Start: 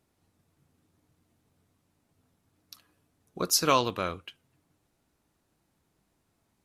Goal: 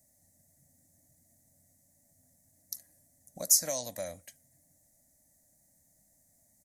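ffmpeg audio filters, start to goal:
-filter_complex "[0:a]firequalizer=gain_entry='entry(270,0);entry(400,-20);entry(580,8);entry(1200,-25);entry(1900,4);entry(2700,-22);entry(3900,-6);entry(6500,15)':delay=0.05:min_phase=1,acrossover=split=460|3600[s0][s1][s2];[s0]acompressor=threshold=0.00355:ratio=4[s3];[s1]acompressor=threshold=0.0141:ratio=4[s4];[s2]acompressor=threshold=0.0708:ratio=4[s5];[s3][s4][s5]amix=inputs=3:normalize=0"

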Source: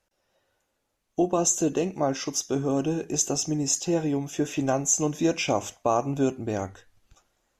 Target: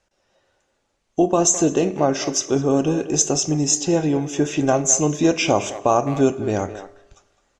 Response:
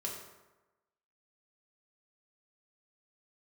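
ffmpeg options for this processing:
-filter_complex "[0:a]lowpass=f=8500:w=0.5412,lowpass=f=8500:w=1.3066,asplit=2[s0][s1];[s1]adelay=210,highpass=300,lowpass=3400,asoftclip=type=hard:threshold=0.106,volume=0.251[s2];[s0][s2]amix=inputs=2:normalize=0,asplit=2[s3][s4];[1:a]atrim=start_sample=2205[s5];[s4][s5]afir=irnorm=-1:irlink=0,volume=0.266[s6];[s3][s6]amix=inputs=2:normalize=0,volume=1.78"

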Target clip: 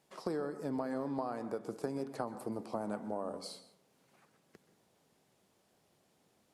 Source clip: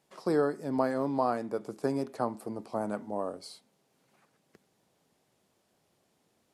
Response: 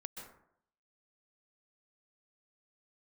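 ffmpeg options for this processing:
-filter_complex "[0:a]acompressor=threshold=0.0224:ratio=12,asplit=2[s0][s1];[1:a]atrim=start_sample=2205[s2];[s1][s2]afir=irnorm=-1:irlink=0,volume=0.75[s3];[s0][s3]amix=inputs=2:normalize=0,volume=0.708"

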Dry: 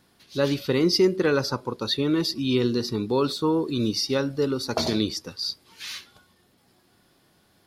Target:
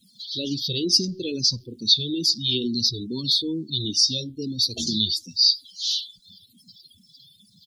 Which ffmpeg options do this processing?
-filter_complex "[0:a]aeval=exprs='val(0)+0.5*0.0188*sgn(val(0))':c=same,firequalizer=gain_entry='entry(230,0);entry(500,-12);entry(1500,-20);entry(3200,11)':delay=0.05:min_phase=1,afftdn=nr=32:nf=-28,asplit=2[s0][s1];[s1]afreqshift=-2.3[s2];[s0][s2]amix=inputs=2:normalize=1"

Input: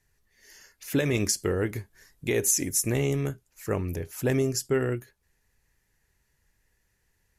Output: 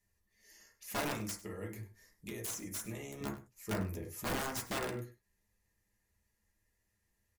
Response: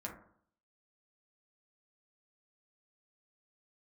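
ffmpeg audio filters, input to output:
-filter_complex "[0:a]highshelf=f=4400:g=6,bandreject=f=1500:w=5.1,asettb=1/sr,asplit=3[s0][s1][s2];[s0]atrim=end=1.124[s3];[s1]atrim=start=1.12:end=3.21,asetpts=PTS-STARTPTS,afade=t=in:d=0.004:c=qsin,afade=t=out:st=2.086:d=0.004:c=qsin,acrossover=split=90|670|5000[s4][s5][s6][s7];[s4]acompressor=threshold=0.00355:ratio=4[s8];[s5]acompressor=threshold=0.0141:ratio=4[s9];[s6]acompressor=threshold=0.01:ratio=4[s10];[s7]acompressor=threshold=0.0355:ratio=4[s11];[s8][s9][s10][s11]amix=inputs=4:normalize=0[s12];[s2]atrim=start=3.206[s13];[s3][s12]acrossfade=d=0.004:c1=hsin:c2=qsin[s14];[s14][s13]acrossfade=d=0.004:c1=qsin:c2=hsin,aeval=exprs='(mod(10.6*val(0)+1,2)-1)/10.6':c=same,aecho=1:1:99:0.141[s15];[1:a]atrim=start_sample=2205,atrim=end_sample=3969[s16];[s15][s16]afir=irnorm=-1:irlink=0,volume=0.422"

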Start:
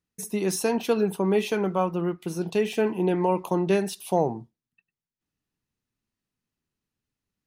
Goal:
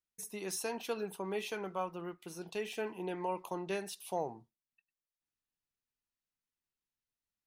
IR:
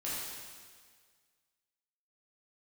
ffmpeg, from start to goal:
-af "equalizer=f=160:w=0.38:g=-10.5,volume=0.376"

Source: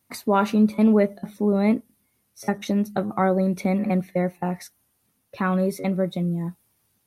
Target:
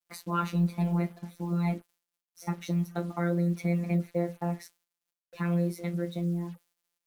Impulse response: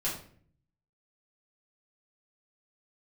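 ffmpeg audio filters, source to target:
-af "flanger=delay=9.9:depth=5.7:regen=-58:speed=0.55:shape=triangular,afftfilt=real='hypot(re,im)*cos(PI*b)':imag='0':win_size=1024:overlap=0.75,acrusher=bits=8:mix=0:aa=0.5"

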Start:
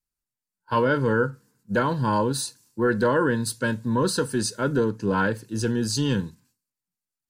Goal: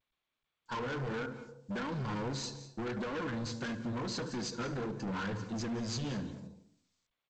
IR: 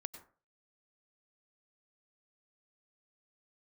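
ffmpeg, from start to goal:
-filter_complex "[0:a]agate=range=0.0251:threshold=0.00251:ratio=16:detection=peak,equalizer=f=680:w=3.7:g=-13,acompressor=threshold=0.0316:ratio=10,flanger=delay=3.4:depth=5.9:regen=-4:speed=1.6:shape=sinusoidal,asplit=2[s0][s1];[s1]adelay=73,lowpass=f=1500:p=1,volume=0.266,asplit=2[s2][s3];[s3]adelay=73,lowpass=f=1500:p=1,volume=0.28,asplit=2[s4][s5];[s5]adelay=73,lowpass=f=1500:p=1,volume=0.28[s6];[s0][s2][s4][s6]amix=inputs=4:normalize=0,asoftclip=type=hard:threshold=0.0106,aeval=exprs='0.0106*(cos(1*acos(clip(val(0)/0.0106,-1,1)))-cos(1*PI/2))+0.000106*(cos(2*acos(clip(val(0)/0.0106,-1,1)))-cos(2*PI/2))+0.000299*(cos(4*acos(clip(val(0)/0.0106,-1,1)))-cos(4*PI/2))':c=same,asplit=2[s7][s8];[1:a]atrim=start_sample=2205,asetrate=23814,aresample=44100[s9];[s8][s9]afir=irnorm=-1:irlink=0,volume=1.5[s10];[s7][s10]amix=inputs=2:normalize=0,volume=0.708" -ar 16000 -c:a g722

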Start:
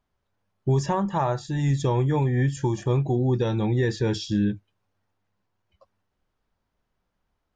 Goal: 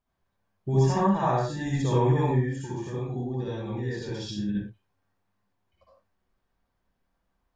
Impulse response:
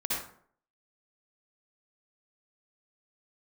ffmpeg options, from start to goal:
-filter_complex "[0:a]asettb=1/sr,asplit=3[s0][s1][s2];[s0]atrim=end=2.314[s3];[s1]atrim=start=2.31:end=4.49,asetpts=PTS-STARTPTS,afade=t=in:d=0.004:c=qsin,afade=t=out:st=2.176:d=0.004:c=qsin,acompressor=threshold=0.0355:ratio=6[s4];[s2]atrim=start=4.486[s5];[s3][s4]acrossfade=d=0.004:c1=hsin:c2=qsin[s6];[s6][s5]acrossfade=d=0.004:c1=qsin:c2=hsin[s7];[1:a]atrim=start_sample=2205,afade=t=out:st=0.24:d=0.01,atrim=end_sample=11025[s8];[s7][s8]afir=irnorm=-1:irlink=0,volume=0.501"

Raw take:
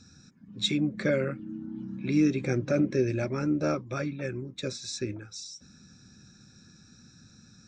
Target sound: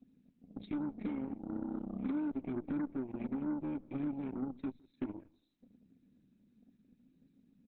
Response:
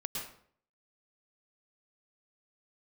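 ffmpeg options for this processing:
-filter_complex "[0:a]asettb=1/sr,asplit=3[s0][s1][s2];[s0]atrim=end=0.984[s3];[s1]atrim=start=0.98:end=2.41,asetpts=PTS-STARTPTS,afade=t=in:d=0.004:c=qsin,afade=t=out:st=1.426:d=0.004:c=qsin,acrossover=split=160 7300:gain=0.112 1 0.1[s4][s5][s6];[s4][s5][s6]amix=inputs=3:normalize=0[s7];[s2]atrim=start=2.406[s8];[s3][s7]acrossfade=d=0.004:c1=hsin:c2=qsin[s9];[s9][s8]acrossfade=d=0.004:c1=qsin:c2=hsin,flanger=delay=4.6:depth=1.4:regen=51:speed=0.9:shape=sinusoidal,asplit=3[s10][s11][s12];[s10]bandpass=f=270:t=q:w=8,volume=1[s13];[s11]bandpass=f=2290:t=q:w=8,volume=0.501[s14];[s12]bandpass=f=3010:t=q:w=8,volume=0.355[s15];[s13][s14][s15]amix=inputs=3:normalize=0,acompressor=threshold=0.00398:ratio=20,tiltshelf=f=750:g=9,aeval=exprs='0.0158*(cos(1*acos(clip(val(0)/0.0158,-1,1)))-cos(1*PI/2))+0.000794*(cos(2*acos(clip(val(0)/0.0158,-1,1)))-cos(2*PI/2))+0.001*(cos(6*acos(clip(val(0)/0.0158,-1,1)))-cos(6*PI/2))+0.00158*(cos(7*acos(clip(val(0)/0.0158,-1,1)))-cos(7*PI/2))+0.0002*(cos(8*acos(clip(val(0)/0.0158,-1,1)))-cos(8*PI/2))':c=same,asettb=1/sr,asplit=3[s16][s17][s18];[s16]atrim=end=3.634[s19];[s17]atrim=start=3.63:end=4.77,asetpts=PTS-STARTPTS,afade=t=in:d=0.004:c=qsin,afade=t=out:st=1.136:d=0.004:c=qsin,bandreject=f=60:t=h:w=6,bandreject=f=120:t=h:w=6,bandreject=f=180:t=h:w=6,bandreject=f=240:t=h:w=6[s20];[s18]atrim=start=4.766[s21];[s19][s20]acrossfade=d=0.004:c1=hsin:c2=qsin[s22];[s22][s21]acrossfade=d=0.004:c1=qsin:c2=hsin,asplit=2[s23][s24];[s24]adelay=161,lowpass=f=1000:p=1,volume=0.0708,asplit=2[s25][s26];[s26]adelay=161,lowpass=f=1000:p=1,volume=0.18[s27];[s25][s27]amix=inputs=2:normalize=0[s28];[s23][s28]amix=inputs=2:normalize=0,volume=2.66" -ar 48000 -c:a libopus -b:a 8k

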